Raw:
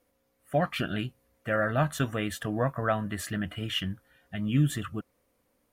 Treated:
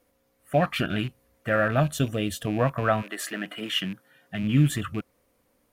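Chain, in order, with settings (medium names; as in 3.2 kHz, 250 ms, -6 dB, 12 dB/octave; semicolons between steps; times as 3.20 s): rattle on loud lows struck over -35 dBFS, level -35 dBFS; 1.80–2.47 s: high-order bell 1.3 kHz -10.5 dB; 3.01–4.42 s: high-pass 370 Hz -> 99 Hz 24 dB/octave; trim +4 dB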